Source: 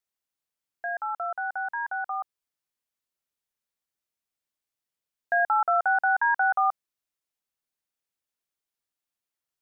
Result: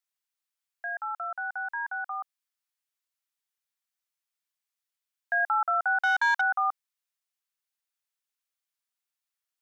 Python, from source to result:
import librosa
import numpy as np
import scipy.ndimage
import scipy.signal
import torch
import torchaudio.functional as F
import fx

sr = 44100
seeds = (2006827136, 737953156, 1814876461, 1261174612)

y = fx.leveller(x, sr, passes=1, at=(6.01, 6.41))
y = scipy.signal.sosfilt(scipy.signal.butter(2, 1000.0, 'highpass', fs=sr, output='sos'), y)